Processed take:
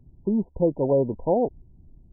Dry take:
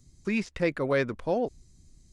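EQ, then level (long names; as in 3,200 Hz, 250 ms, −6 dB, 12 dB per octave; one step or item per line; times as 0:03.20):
linear-phase brick-wall low-pass 1,000 Hz
+5.5 dB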